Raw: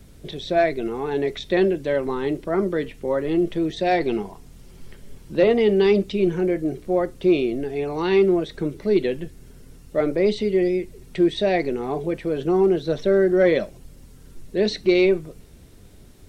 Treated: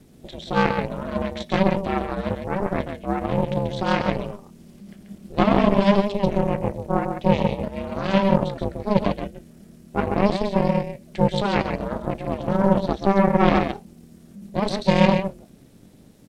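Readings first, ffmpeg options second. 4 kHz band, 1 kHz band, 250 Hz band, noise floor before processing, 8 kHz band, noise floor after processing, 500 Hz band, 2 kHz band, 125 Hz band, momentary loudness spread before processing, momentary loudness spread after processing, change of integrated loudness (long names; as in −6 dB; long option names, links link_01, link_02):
0.0 dB, +6.5 dB, +0.5 dB, −47 dBFS, can't be measured, −49 dBFS, −4.0 dB, +0.5 dB, +7.0 dB, 9 LU, 12 LU, −1.0 dB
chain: -af "aecho=1:1:136:0.562,aeval=exprs='0.596*(cos(1*acos(clip(val(0)/0.596,-1,1)))-cos(1*PI/2))+0.266*(cos(4*acos(clip(val(0)/0.596,-1,1)))-cos(4*PI/2))':channel_layout=same,aeval=exprs='val(0)*sin(2*PI*200*n/s)':channel_layout=same,volume=-2dB"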